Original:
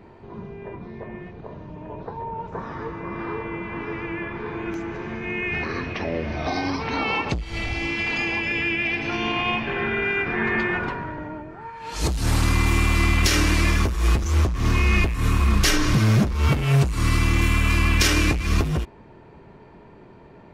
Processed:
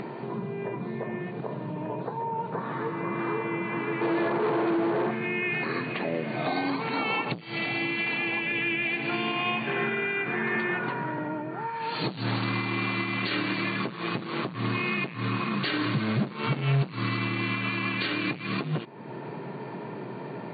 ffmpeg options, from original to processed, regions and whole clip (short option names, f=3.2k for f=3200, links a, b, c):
-filter_complex "[0:a]asettb=1/sr,asplit=3[a][b][c];[a]atrim=end=4.014[d];[b]atrim=start=4.01:end=5.11,asetpts=PTS-STARTPTS,afade=t=in:d=0.004:c=qsin,afade=t=out:st=1.096:d=0.004:c=qsin,lowpass=1.9k,equalizer=f=610:w=0.72:g=14,volume=22.5dB,asoftclip=hard,volume=-22.5dB[e];[c]atrim=start=5.106[f];[d][e]acrossfade=d=0.004:c1=hsin:c2=qsin[g];[g][f]acrossfade=d=0.004:c1=qsin:c2=hsin,afftfilt=real='re*between(b*sr/4096,110,4600)':imag='im*between(b*sr/4096,110,4600)':win_size=4096:overlap=0.75,acompressor=mode=upward:threshold=-26dB:ratio=2.5,alimiter=limit=-18.5dB:level=0:latency=1:release=338"